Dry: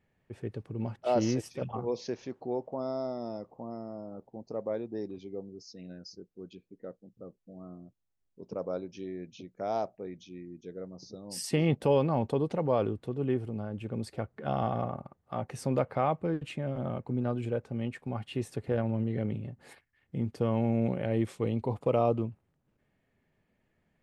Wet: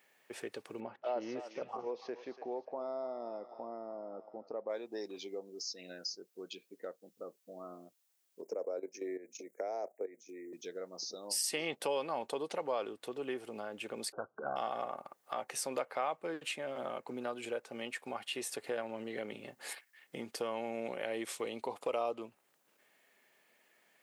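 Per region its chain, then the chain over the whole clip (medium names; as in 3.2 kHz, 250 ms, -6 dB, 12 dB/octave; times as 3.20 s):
0.80–4.70 s: tape spacing loss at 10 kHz 43 dB + thinning echo 289 ms, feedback 42%, high-pass 1 kHz, level -12 dB
8.42–10.53 s: steep high-pass 180 Hz 48 dB/octave + level held to a coarse grid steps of 13 dB + FFT filter 160 Hz 0 dB, 460 Hz +10 dB, 1.2 kHz -5 dB, 2.1 kHz +4 dB, 3.2 kHz -23 dB, 7.5 kHz +6 dB
14.12–14.56 s: bass shelf 160 Hz +7.5 dB + overload inside the chain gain 24.5 dB + brick-wall FIR low-pass 1.6 kHz
whole clip: high-pass 380 Hz 12 dB/octave; tilt EQ +3 dB/octave; compression 2:1, threshold -50 dBFS; trim +8 dB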